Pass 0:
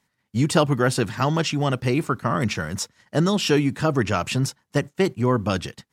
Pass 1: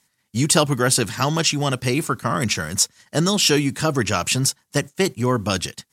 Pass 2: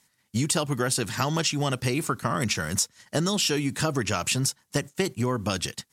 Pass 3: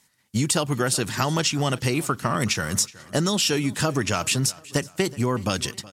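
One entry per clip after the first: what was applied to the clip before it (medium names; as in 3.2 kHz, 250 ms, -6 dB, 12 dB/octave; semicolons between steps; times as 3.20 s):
peaking EQ 10 kHz +13.5 dB 2.4 oct
compression, threshold -22 dBFS, peak gain reduction 10.5 dB
feedback delay 371 ms, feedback 39%, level -20.5 dB; trim +2.5 dB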